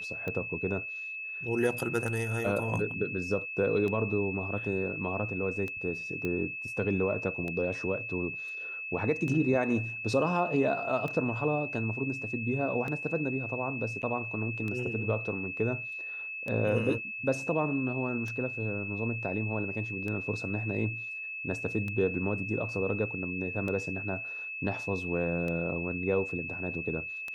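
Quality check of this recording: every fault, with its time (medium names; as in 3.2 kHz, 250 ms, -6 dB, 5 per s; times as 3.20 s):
tick 33 1/3 rpm -23 dBFS
whine 2.6 kHz -36 dBFS
6.25 s: pop -21 dBFS
14.02–14.03 s: dropout 9.6 ms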